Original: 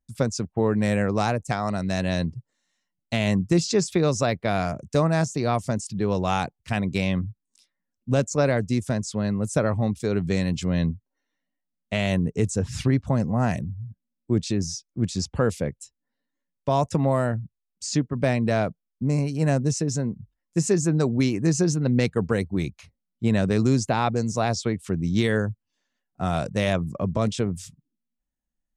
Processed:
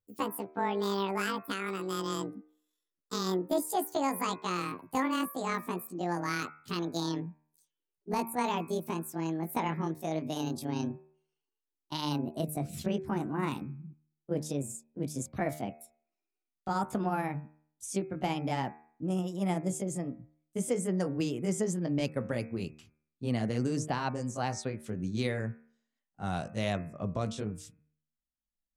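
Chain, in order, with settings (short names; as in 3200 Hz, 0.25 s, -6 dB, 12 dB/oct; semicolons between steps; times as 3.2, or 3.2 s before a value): gliding pitch shift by +12 st ending unshifted; de-hum 76.38 Hz, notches 34; gain -8 dB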